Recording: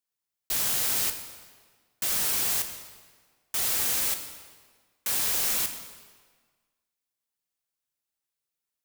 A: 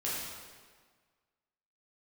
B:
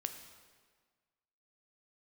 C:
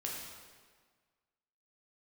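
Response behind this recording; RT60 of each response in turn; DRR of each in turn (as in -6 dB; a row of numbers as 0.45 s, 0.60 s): B; 1.6 s, 1.6 s, 1.6 s; -8.0 dB, 6.5 dB, -3.0 dB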